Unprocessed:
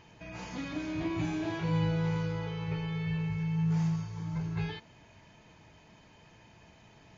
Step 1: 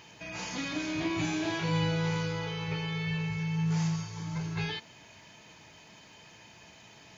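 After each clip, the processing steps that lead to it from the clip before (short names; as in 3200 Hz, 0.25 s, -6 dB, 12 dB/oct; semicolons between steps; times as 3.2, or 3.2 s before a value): HPF 140 Hz 6 dB/oct; high shelf 2400 Hz +10.5 dB; gain +2 dB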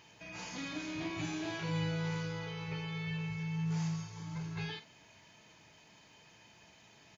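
doubler 44 ms -11.5 dB; gain -7 dB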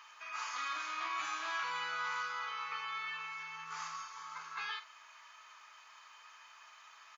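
resonant high-pass 1200 Hz, resonance Q 9.2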